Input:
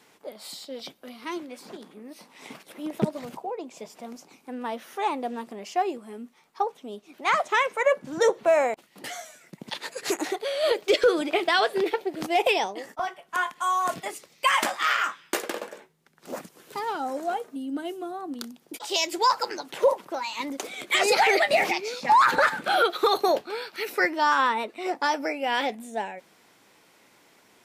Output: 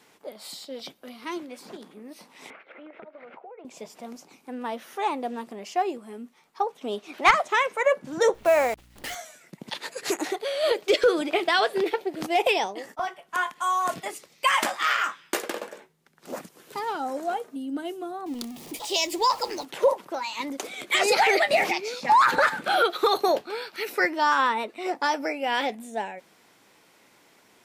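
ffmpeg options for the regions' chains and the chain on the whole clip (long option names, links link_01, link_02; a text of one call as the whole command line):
ffmpeg -i in.wav -filter_complex "[0:a]asettb=1/sr,asplit=3[link_01][link_02][link_03];[link_01]atrim=end=2.504[link_04];[link_02]atrim=start=2.5:end=3.65,asetpts=PTS-STARTPTS,afade=type=in:duration=0.004:curve=qsin,afade=type=out:start_time=1.146:duration=0.004:curve=qsin,highpass=450,equalizer=frequency=520:width_type=q:width=4:gain=4,equalizer=frequency=990:width_type=q:width=4:gain=-4,equalizer=frequency=1400:width_type=q:width=4:gain=7,equalizer=frequency=2200:width_type=q:width=4:gain=6,lowpass=frequency=2500:width=0.5412,lowpass=frequency=2500:width=1.3066,acompressor=threshold=-41dB:ratio=8:attack=3.2:release=140:knee=1:detection=peak[link_05];[link_03]atrim=start=3.646[link_06];[link_04][link_05]acrossfade=duration=0.004:curve1=hsin:curve2=qsin[link_07];[link_07][link_06]acrossfade=duration=0.004:curve1=qsin:curve2=hsin,asettb=1/sr,asplit=3[link_08][link_09][link_10];[link_08]atrim=end=6.814[link_11];[link_09]atrim=start=6.81:end=7.31,asetpts=PTS-STARTPTS,afade=type=in:duration=0.004:curve=qsin,afade=type=out:start_time=0.496:duration=0.004:curve=qsin,acontrast=59,asplit=2[link_12][link_13];[link_13]highpass=frequency=720:poles=1,volume=11dB,asoftclip=type=tanh:threshold=-6.5dB[link_14];[link_12][link_14]amix=inputs=2:normalize=0,lowpass=frequency=4100:poles=1,volume=-6dB[link_15];[link_10]atrim=start=7.306[link_16];[link_11][link_15]acrossfade=duration=0.004:curve1=hsin:curve2=qsin[link_17];[link_17][link_16]acrossfade=duration=0.004:curve1=qsin:curve2=hsin,asettb=1/sr,asplit=3[link_18][link_19][link_20];[link_18]atrim=end=8.344[link_21];[link_19]atrim=start=8.34:end=9.15,asetpts=PTS-STARTPTS,afade=type=in:duration=0.004:curve=qsin,afade=type=out:start_time=0.806:duration=0.004:curve=qsin,equalizer=frequency=2500:width_type=o:width=1.6:gain=2.5,acrusher=bits=7:dc=4:mix=0:aa=0.000001,aeval=exprs='val(0)+0.00178*(sin(2*PI*60*n/s)+sin(2*PI*2*60*n/s)/2+sin(2*PI*3*60*n/s)/3+sin(2*PI*4*60*n/s)/4+sin(2*PI*5*60*n/s)/5)':channel_layout=same[link_22];[link_20]atrim=start=9.146[link_23];[link_21][link_22]acrossfade=duration=0.004:curve1=hsin:curve2=qsin[link_24];[link_24][link_23]acrossfade=duration=0.004:curve1=qsin:curve2=hsin,asettb=1/sr,asplit=3[link_25][link_26][link_27];[link_25]atrim=end=18.264[link_28];[link_26]atrim=start=18.26:end=19.65,asetpts=PTS-STARTPTS,afade=type=in:duration=0.004:curve=qsin,afade=type=out:start_time=1.386:duration=0.004:curve=qsin,aeval=exprs='val(0)+0.5*0.0126*sgn(val(0))':channel_layout=same,equalizer=frequency=1500:width_type=o:width=0.36:gain=-13.5[link_29];[link_27]atrim=start=19.646[link_30];[link_28][link_29]acrossfade=duration=0.004:curve1=hsin:curve2=qsin[link_31];[link_31][link_30]acrossfade=duration=0.004:curve1=qsin:curve2=hsin" out.wav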